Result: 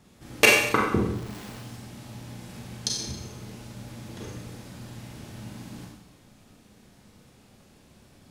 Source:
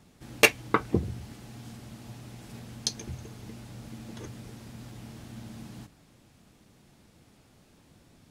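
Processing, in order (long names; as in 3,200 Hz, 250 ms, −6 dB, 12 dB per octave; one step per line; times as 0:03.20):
0:01.13–0:01.59: comparator with hysteresis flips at −58.5 dBFS
four-comb reverb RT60 0.83 s, combs from 30 ms, DRR −2 dB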